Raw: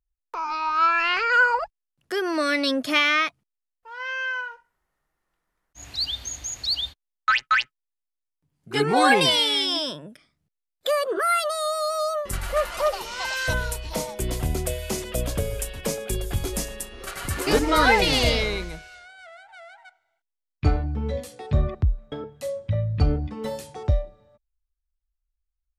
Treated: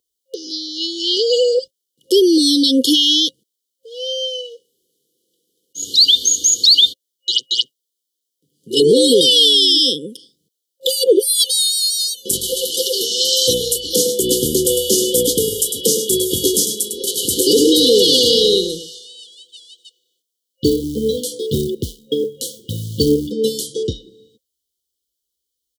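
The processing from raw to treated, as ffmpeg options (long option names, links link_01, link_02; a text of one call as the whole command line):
ffmpeg -i in.wav -filter_complex "[0:a]asettb=1/sr,asplit=3[link_01][link_02][link_03];[link_01]atrim=end=7.614[link_04];[link_02]atrim=start=7.61:end=8.77,asetpts=PTS-STARTPTS,afade=type=in:duration=0.004:curve=qsin,afade=type=out:start_time=1.156:duration=0.004:curve=qsin,acompressor=threshold=-32dB:ratio=6:attack=3.2:release=140:knee=1:detection=peak[link_05];[link_03]atrim=start=8.766[link_06];[link_04][link_05]acrossfade=duration=0.004:curve1=hsin:curve2=qsin[link_07];[link_07][link_06]acrossfade=duration=0.004:curve1=qsin:curve2=hsin,asplit=3[link_08][link_09][link_10];[link_08]afade=type=out:start_time=14:duration=0.02[link_11];[link_09]aecho=1:1:103:0.266,afade=type=in:start_time=14:duration=0.02,afade=type=out:start_time=19.28:duration=0.02[link_12];[link_10]afade=type=in:start_time=19.28:duration=0.02[link_13];[link_11][link_12][link_13]amix=inputs=3:normalize=0,asettb=1/sr,asplit=3[link_14][link_15][link_16];[link_14]atrim=end=20.644[link_17];[link_15]atrim=start=20.64:end=23.32,asetpts=PTS-STARTPTS,afade=type=in:duration=0.004:curve=qsin,afade=type=out:start_time=2.676:duration=0.004:curve=qsin,acrusher=bits=8:mode=log:mix=0:aa=0.000001[link_18];[link_16]atrim=start=23.316[link_19];[link_17][link_18]acrossfade=duration=0.004:curve1=hsin:curve2=qsin[link_20];[link_20][link_19]acrossfade=duration=0.004:curve1=qsin:curve2=hsin,afftfilt=real='re*(1-between(b*sr/4096,530,2900))':imag='im*(1-between(b*sr/4096,530,2900))':win_size=4096:overlap=0.75,highpass=350,alimiter=level_in=21dB:limit=-1dB:release=50:level=0:latency=1,volume=-2.5dB" out.wav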